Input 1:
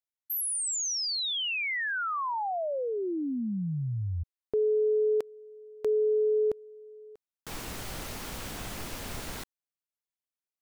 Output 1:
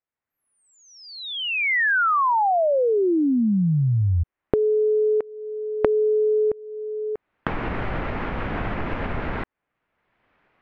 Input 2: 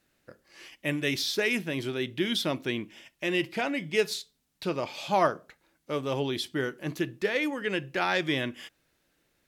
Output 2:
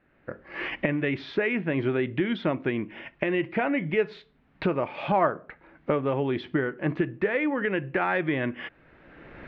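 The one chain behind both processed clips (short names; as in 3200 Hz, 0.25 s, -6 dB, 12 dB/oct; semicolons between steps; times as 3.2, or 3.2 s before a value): recorder AGC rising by 23 dB/s, up to +32 dB; LPF 2200 Hz 24 dB/oct; in parallel at +2.5 dB: compressor, threshold -35 dBFS; on the sum: gain -1 dB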